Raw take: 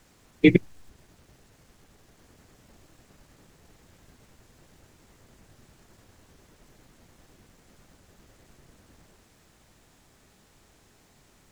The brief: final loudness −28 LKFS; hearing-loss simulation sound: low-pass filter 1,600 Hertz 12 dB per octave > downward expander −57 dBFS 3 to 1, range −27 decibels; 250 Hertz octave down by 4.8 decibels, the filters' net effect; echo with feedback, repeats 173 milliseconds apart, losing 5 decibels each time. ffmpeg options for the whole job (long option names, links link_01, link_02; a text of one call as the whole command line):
ffmpeg -i in.wav -af "lowpass=1600,equalizer=frequency=250:width_type=o:gain=-7,aecho=1:1:173|346|519|692|865|1038|1211:0.562|0.315|0.176|0.0988|0.0553|0.031|0.0173,agate=range=-27dB:threshold=-57dB:ratio=3,volume=-0.5dB" out.wav